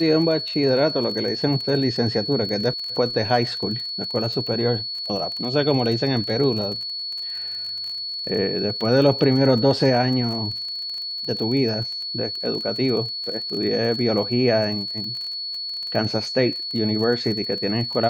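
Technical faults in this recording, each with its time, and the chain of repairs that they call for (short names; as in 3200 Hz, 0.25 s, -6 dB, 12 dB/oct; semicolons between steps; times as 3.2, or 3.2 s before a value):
crackle 30/s -29 dBFS
tone 4400 Hz -27 dBFS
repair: de-click; notch 4400 Hz, Q 30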